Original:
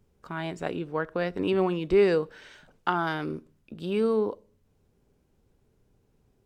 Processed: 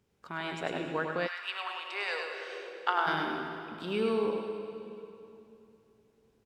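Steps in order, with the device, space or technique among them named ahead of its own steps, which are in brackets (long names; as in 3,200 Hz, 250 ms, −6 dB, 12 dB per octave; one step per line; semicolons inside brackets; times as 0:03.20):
PA in a hall (high-pass filter 130 Hz 6 dB per octave; parametric band 3,000 Hz +6 dB 2.8 octaves; single-tap delay 101 ms −5 dB; convolution reverb RT60 2.9 s, pre-delay 73 ms, DRR 5 dB)
0:01.26–0:03.06: high-pass filter 1,100 Hz → 400 Hz 24 dB per octave
level −5.5 dB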